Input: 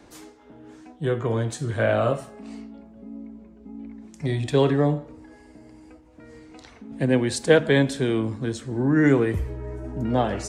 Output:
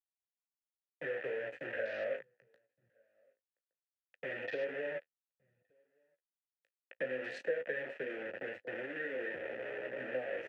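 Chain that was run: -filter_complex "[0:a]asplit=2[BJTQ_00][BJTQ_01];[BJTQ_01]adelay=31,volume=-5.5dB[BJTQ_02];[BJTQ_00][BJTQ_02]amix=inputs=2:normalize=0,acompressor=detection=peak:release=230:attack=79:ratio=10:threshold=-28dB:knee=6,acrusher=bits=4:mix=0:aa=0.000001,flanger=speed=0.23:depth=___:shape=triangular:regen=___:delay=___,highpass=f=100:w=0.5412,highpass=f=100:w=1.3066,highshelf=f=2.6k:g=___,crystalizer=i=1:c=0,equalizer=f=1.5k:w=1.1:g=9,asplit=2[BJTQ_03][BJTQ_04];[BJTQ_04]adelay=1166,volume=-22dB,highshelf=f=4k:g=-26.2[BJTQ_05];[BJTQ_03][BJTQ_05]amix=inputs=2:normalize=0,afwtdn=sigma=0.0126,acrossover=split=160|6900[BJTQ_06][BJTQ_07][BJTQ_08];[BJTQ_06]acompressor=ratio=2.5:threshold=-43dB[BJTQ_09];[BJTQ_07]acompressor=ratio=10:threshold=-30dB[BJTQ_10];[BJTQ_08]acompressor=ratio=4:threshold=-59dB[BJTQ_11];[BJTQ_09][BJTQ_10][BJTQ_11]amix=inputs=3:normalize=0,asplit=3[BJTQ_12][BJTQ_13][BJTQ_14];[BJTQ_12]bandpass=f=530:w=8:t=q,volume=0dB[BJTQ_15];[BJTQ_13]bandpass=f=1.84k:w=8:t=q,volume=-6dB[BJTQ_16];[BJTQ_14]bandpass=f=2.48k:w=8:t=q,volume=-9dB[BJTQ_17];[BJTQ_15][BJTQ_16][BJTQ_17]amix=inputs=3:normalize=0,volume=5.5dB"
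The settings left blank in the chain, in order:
9.6, 34, 9.4, -2.5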